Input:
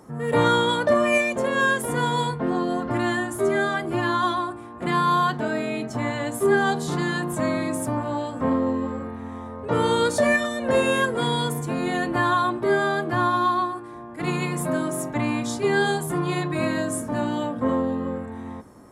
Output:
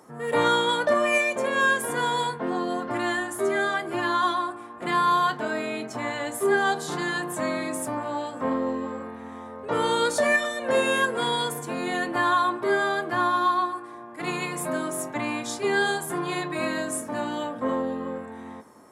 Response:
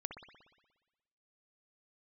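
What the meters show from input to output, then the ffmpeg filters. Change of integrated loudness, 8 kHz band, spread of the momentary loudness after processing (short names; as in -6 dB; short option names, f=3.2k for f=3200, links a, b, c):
-2.0 dB, 0.0 dB, 10 LU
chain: -filter_complex "[0:a]highpass=f=460:p=1,asplit=2[a][b];[1:a]atrim=start_sample=2205,asetrate=29106,aresample=44100,adelay=23[c];[b][c]afir=irnorm=-1:irlink=0,volume=-15.5dB[d];[a][d]amix=inputs=2:normalize=0"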